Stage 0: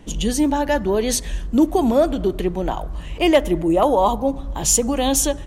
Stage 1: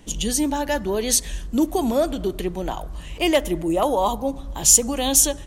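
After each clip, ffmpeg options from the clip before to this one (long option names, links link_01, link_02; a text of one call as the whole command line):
ffmpeg -i in.wav -af "highshelf=frequency=3400:gain=10,volume=-4.5dB" out.wav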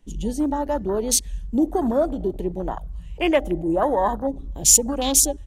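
ffmpeg -i in.wav -af "afwtdn=0.0447" out.wav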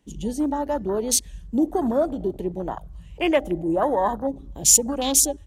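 ffmpeg -i in.wav -af "highpass=64,volume=-1dB" out.wav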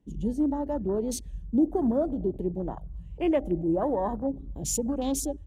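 ffmpeg -i in.wav -af "tiltshelf=frequency=730:gain=8.5,volume=-7.5dB" out.wav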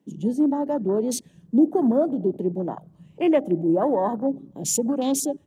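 ffmpeg -i in.wav -af "highpass=frequency=160:width=0.5412,highpass=frequency=160:width=1.3066,volume=5.5dB" out.wav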